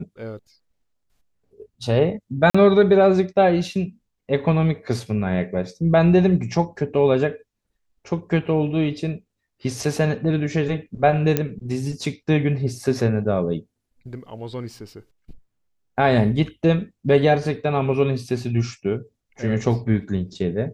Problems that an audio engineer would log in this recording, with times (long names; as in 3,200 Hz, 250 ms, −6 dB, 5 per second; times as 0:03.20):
0:02.50–0:02.54: drop-out 45 ms
0:11.37: click −6 dBFS